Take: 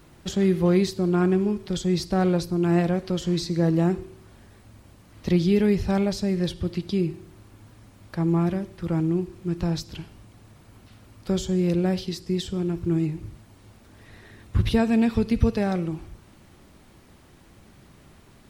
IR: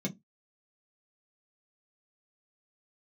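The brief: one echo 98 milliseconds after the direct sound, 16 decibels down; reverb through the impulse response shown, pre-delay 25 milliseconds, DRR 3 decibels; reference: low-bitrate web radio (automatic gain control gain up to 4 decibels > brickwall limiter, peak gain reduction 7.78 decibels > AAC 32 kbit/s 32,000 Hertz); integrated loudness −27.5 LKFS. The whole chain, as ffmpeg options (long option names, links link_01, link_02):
-filter_complex "[0:a]aecho=1:1:98:0.158,asplit=2[link_01][link_02];[1:a]atrim=start_sample=2205,adelay=25[link_03];[link_02][link_03]afir=irnorm=-1:irlink=0,volume=-5.5dB[link_04];[link_01][link_04]amix=inputs=2:normalize=0,dynaudnorm=maxgain=4dB,alimiter=limit=-8.5dB:level=0:latency=1,volume=-10dB" -ar 32000 -c:a aac -b:a 32k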